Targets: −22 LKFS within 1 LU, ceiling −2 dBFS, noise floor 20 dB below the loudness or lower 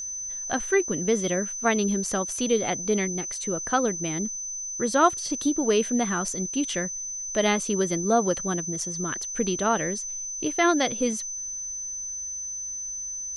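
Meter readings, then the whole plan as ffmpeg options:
interfering tone 6,100 Hz; level of the tone −31 dBFS; integrated loudness −26.0 LKFS; sample peak −7.0 dBFS; target loudness −22.0 LKFS
→ -af "bandreject=frequency=6100:width=30"
-af "volume=4dB"

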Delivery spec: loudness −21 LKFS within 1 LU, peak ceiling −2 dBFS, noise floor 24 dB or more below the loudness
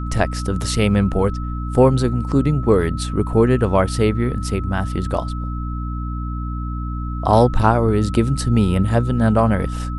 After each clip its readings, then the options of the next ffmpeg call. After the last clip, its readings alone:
mains hum 60 Hz; hum harmonics up to 300 Hz; level of the hum −23 dBFS; interfering tone 1,300 Hz; level of the tone −33 dBFS; integrated loudness −19.0 LKFS; sample peak −1.0 dBFS; target loudness −21.0 LKFS
→ -af "bandreject=frequency=60:width_type=h:width=4,bandreject=frequency=120:width_type=h:width=4,bandreject=frequency=180:width_type=h:width=4,bandreject=frequency=240:width_type=h:width=4,bandreject=frequency=300:width_type=h:width=4"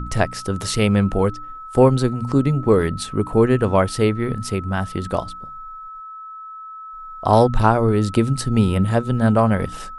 mains hum none found; interfering tone 1,300 Hz; level of the tone −33 dBFS
→ -af "bandreject=frequency=1300:width=30"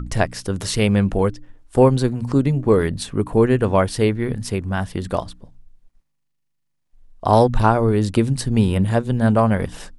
interfering tone none found; integrated loudness −19.0 LKFS; sample peak −2.0 dBFS; target loudness −21.0 LKFS
→ -af "volume=-2dB"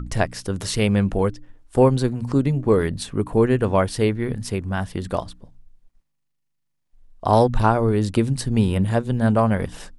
integrated loudness −21.0 LKFS; sample peak −4.0 dBFS; background noise floor −73 dBFS

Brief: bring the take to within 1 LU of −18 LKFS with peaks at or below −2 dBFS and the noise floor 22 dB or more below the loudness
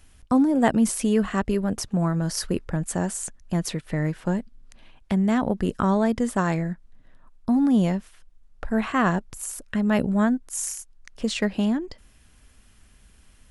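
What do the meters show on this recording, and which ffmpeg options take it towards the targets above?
integrated loudness −24.5 LKFS; sample peak −4.5 dBFS; target loudness −18.0 LKFS
→ -af "volume=6.5dB,alimiter=limit=-2dB:level=0:latency=1"

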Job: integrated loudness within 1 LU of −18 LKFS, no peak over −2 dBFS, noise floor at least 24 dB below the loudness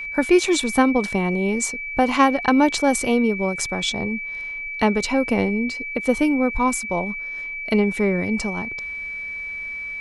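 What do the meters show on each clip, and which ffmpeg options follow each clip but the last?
interfering tone 2,300 Hz; level of the tone −28 dBFS; integrated loudness −21.5 LKFS; sample peak −3.0 dBFS; target loudness −18.0 LKFS
→ -af "bandreject=frequency=2300:width=30"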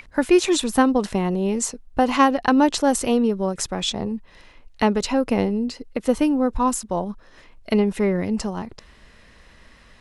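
interfering tone none found; integrated loudness −21.5 LKFS; sample peak −3.5 dBFS; target loudness −18.0 LKFS
→ -af "volume=3.5dB,alimiter=limit=-2dB:level=0:latency=1"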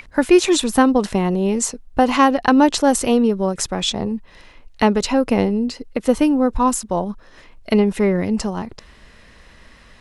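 integrated loudness −18.0 LKFS; sample peak −2.0 dBFS; background noise floor −47 dBFS

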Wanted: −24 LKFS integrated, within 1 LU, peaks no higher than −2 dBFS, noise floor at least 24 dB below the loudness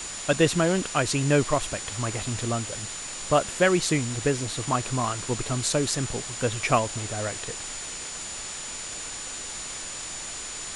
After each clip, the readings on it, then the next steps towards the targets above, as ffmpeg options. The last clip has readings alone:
interfering tone 7,000 Hz; level of the tone −37 dBFS; background noise floor −36 dBFS; target noise floor −51 dBFS; integrated loudness −27.0 LKFS; sample peak −7.0 dBFS; target loudness −24.0 LKFS
→ -af "bandreject=frequency=7000:width=30"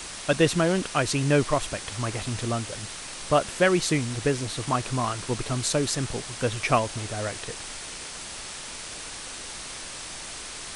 interfering tone none found; background noise floor −38 dBFS; target noise floor −52 dBFS
→ -af "afftdn=noise_reduction=14:noise_floor=-38"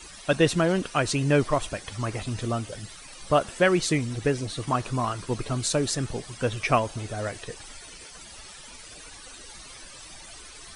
background noise floor −45 dBFS; target noise floor −51 dBFS
→ -af "afftdn=noise_reduction=6:noise_floor=-45"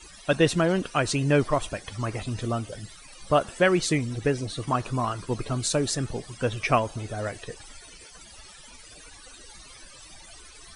background noise floor −48 dBFS; target noise floor −51 dBFS
→ -af "afftdn=noise_reduction=6:noise_floor=-48"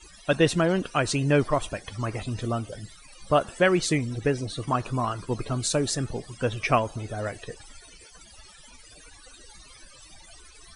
background noise floor −51 dBFS; integrated loudness −26.5 LKFS; sample peak −8.0 dBFS; target loudness −24.0 LKFS
→ -af "volume=2.5dB"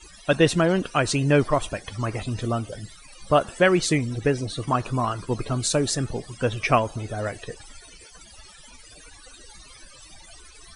integrated loudness −24.0 LKFS; sample peak −5.5 dBFS; background noise floor −48 dBFS

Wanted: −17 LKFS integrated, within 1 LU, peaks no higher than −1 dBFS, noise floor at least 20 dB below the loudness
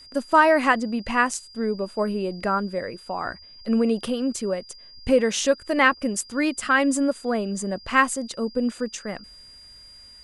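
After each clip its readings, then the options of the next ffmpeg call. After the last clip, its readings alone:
interfering tone 4,800 Hz; level of the tone −45 dBFS; integrated loudness −23.5 LKFS; sample peak −3.5 dBFS; target loudness −17.0 LKFS
→ -af "bandreject=frequency=4800:width=30"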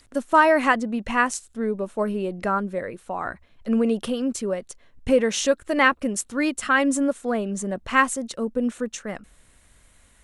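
interfering tone none found; integrated loudness −23.5 LKFS; sample peak −3.5 dBFS; target loudness −17.0 LKFS
→ -af "volume=6.5dB,alimiter=limit=-1dB:level=0:latency=1"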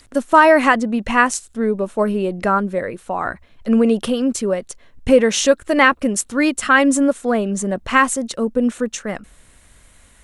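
integrated loudness −17.5 LKFS; sample peak −1.0 dBFS; background noise floor −51 dBFS

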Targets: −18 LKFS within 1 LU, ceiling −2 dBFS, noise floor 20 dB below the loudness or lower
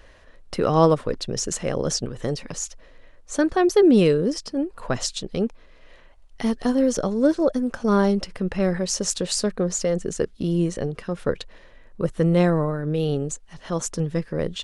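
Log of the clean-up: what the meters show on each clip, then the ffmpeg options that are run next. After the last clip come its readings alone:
integrated loudness −23.0 LKFS; sample peak −5.5 dBFS; target loudness −18.0 LKFS
→ -af "volume=5dB,alimiter=limit=-2dB:level=0:latency=1"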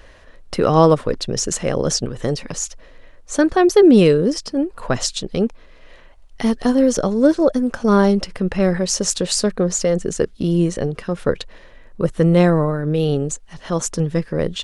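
integrated loudness −18.0 LKFS; sample peak −2.0 dBFS; background noise floor −45 dBFS

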